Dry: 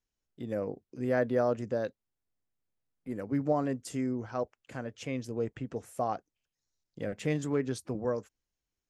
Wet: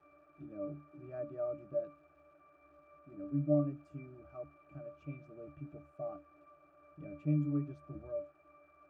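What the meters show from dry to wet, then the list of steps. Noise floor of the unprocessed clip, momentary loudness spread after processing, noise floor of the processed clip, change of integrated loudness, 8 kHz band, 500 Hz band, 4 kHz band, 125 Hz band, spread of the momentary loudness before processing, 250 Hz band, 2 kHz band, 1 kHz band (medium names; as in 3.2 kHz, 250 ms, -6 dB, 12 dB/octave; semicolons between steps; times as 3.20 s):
under -85 dBFS, 18 LU, -66 dBFS, -6.0 dB, under -30 dB, -8.5 dB, under -25 dB, -1.5 dB, 11 LU, -5.0 dB, -19.5 dB, -16.5 dB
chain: crackle 380 per s -42 dBFS; band noise 330–1900 Hz -52 dBFS; pitch-class resonator D, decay 0.29 s; trim +5.5 dB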